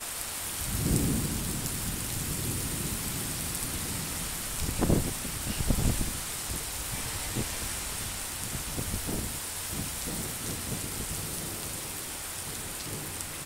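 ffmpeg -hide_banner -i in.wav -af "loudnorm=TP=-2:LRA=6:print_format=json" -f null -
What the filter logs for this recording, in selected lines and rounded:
"input_i" : "-32.0",
"input_tp" : "-11.1",
"input_lra" : "3.7",
"input_thresh" : "-42.0",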